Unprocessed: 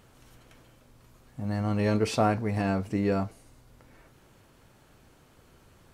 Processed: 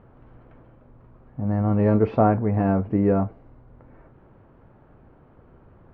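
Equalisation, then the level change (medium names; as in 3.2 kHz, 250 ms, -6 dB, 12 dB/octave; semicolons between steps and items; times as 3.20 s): low-pass 1.2 kHz 12 dB/octave; distance through air 220 m; +7.0 dB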